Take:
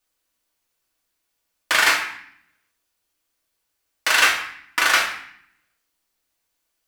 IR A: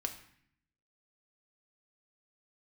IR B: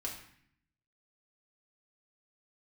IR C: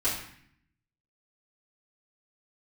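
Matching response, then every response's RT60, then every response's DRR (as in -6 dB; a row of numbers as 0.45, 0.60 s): B; 0.60, 0.60, 0.60 s; 4.5, -2.5, -11.5 dB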